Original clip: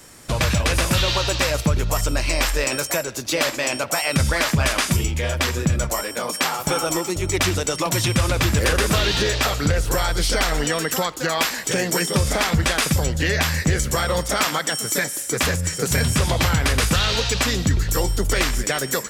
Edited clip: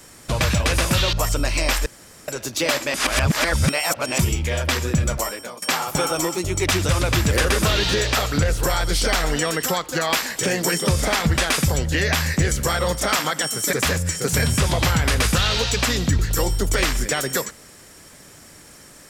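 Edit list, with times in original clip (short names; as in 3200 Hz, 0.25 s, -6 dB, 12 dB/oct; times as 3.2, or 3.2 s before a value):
1.13–1.85 cut
2.58–3 room tone
3.66–4.91 reverse
5.91–6.34 fade out linear, to -18.5 dB
7.61–8.17 cut
15.01–15.31 cut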